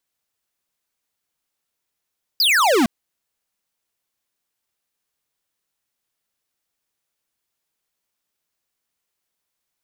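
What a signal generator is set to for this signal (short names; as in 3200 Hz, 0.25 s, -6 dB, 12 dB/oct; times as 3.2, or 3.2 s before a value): laser zap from 5100 Hz, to 210 Hz, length 0.46 s square, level -15.5 dB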